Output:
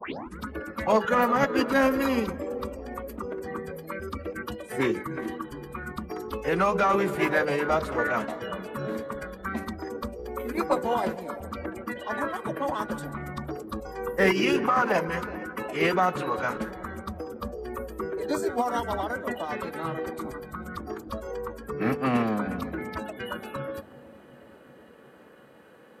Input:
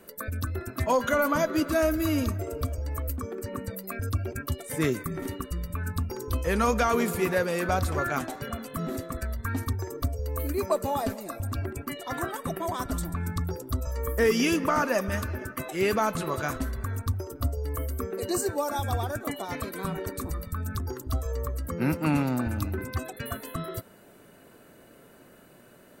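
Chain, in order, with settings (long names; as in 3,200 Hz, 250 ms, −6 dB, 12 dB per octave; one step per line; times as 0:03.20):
turntable start at the beginning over 0.39 s
three-way crossover with the lows and the highs turned down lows −17 dB, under 190 Hz, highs −14 dB, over 3,500 Hz
mains-hum notches 60/120/180/240/300/360/420/480/540/600 Hz
in parallel at −6.5 dB: asymmetric clip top −21 dBFS
on the sum: phase-vocoder pitch shift with formants kept −3 semitones
on a send: bucket-brigade delay 368 ms, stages 2,048, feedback 67%, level −17.5 dB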